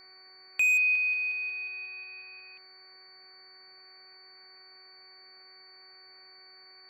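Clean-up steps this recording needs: clip repair -21 dBFS; de-hum 376.6 Hz, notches 6; notch 4500 Hz, Q 30; denoiser 21 dB, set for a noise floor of -54 dBFS

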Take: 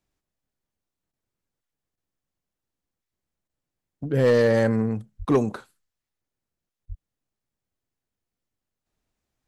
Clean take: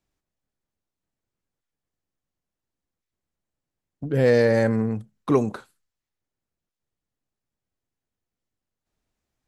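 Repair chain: clip repair -12.5 dBFS; 5.18–5.3 HPF 140 Hz 24 dB/oct; 6.88–7 HPF 140 Hz 24 dB/oct; interpolate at 1.12/1.96/3.48/6.86, 13 ms

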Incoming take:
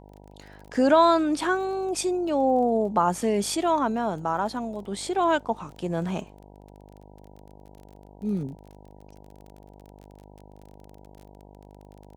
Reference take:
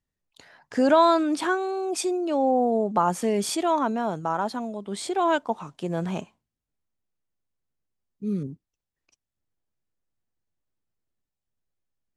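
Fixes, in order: de-click; de-hum 50.3 Hz, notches 19

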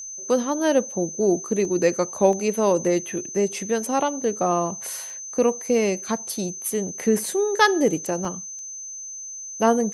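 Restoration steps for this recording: notch 6200 Hz, Q 30; interpolate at 1.65/2.33/5.1/7.26/8.25/8.59, 1.2 ms

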